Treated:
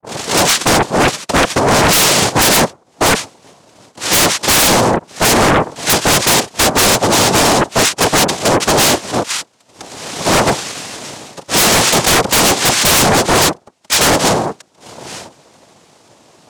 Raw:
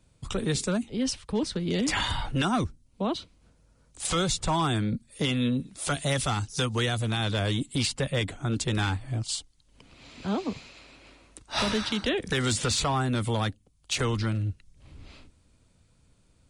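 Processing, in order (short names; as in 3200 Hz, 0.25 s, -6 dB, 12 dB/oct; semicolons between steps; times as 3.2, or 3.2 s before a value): tape start at the beginning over 0.83 s; mistuned SSB -92 Hz 260–3100 Hz; noise vocoder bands 2; sine folder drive 17 dB, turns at -12.5 dBFS; gain +5.5 dB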